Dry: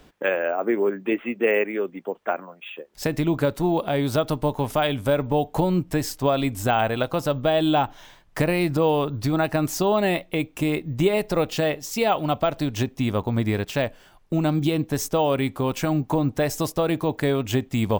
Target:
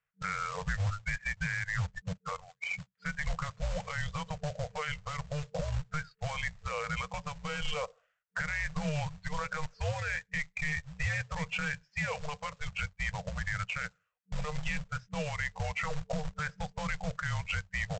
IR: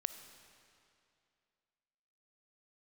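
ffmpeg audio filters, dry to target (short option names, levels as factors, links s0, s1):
-af "afftdn=nr=32:nf=-33,equalizer=f=250:t=o:w=1:g=-11,equalizer=f=1000:t=o:w=1:g=-6,equalizer=f=2000:t=o:w=1:g=11,highpass=f=210:t=q:w=0.5412,highpass=f=210:t=q:w=1.307,lowpass=f=3200:t=q:w=0.5176,lowpass=f=3200:t=q:w=0.7071,lowpass=f=3200:t=q:w=1.932,afreqshift=-300,acompressor=threshold=0.0562:ratio=5,alimiter=limit=0.0668:level=0:latency=1:release=16,aresample=16000,acrusher=bits=3:mode=log:mix=0:aa=0.000001,aresample=44100,afftfilt=real='re*(1-between(b*sr/4096,190,450))':imag='im*(1-between(b*sr/4096,190,450))':win_size=4096:overlap=0.75"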